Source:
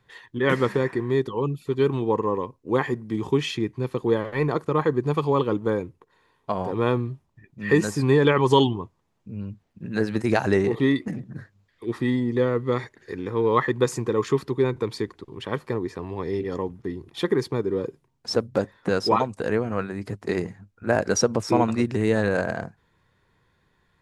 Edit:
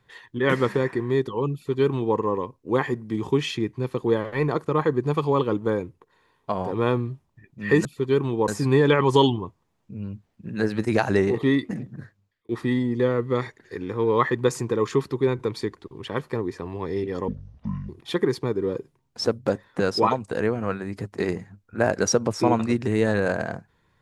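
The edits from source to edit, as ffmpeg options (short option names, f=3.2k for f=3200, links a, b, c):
-filter_complex "[0:a]asplit=6[a][b][c][d][e][f];[a]atrim=end=7.852[g];[b]atrim=start=1.538:end=2.172[h];[c]atrim=start=7.848:end=11.86,asetpts=PTS-STARTPTS,afade=t=out:st=3.432:d=0.58[i];[d]atrim=start=11.86:end=16.654,asetpts=PTS-STARTPTS,afade=t=in:d=0.004:c=hsin[j];[e]atrim=start=16.65:end=16.98,asetpts=PTS-STARTPTS,asetrate=23814,aresample=44100[k];[f]atrim=start=16.976[l];[g][h]acrossfade=d=0.004:c1=hsin:c2=hsin[m];[i][j]concat=n=2:v=0:a=1[n];[m][n]acrossfade=d=0.004:c1=hsin:c2=hsin[o];[o][k]acrossfade=d=0.004:c1=hsin:c2=hsin[p];[p][l]acrossfade=d=0.004:c1=hsin:c2=hsin"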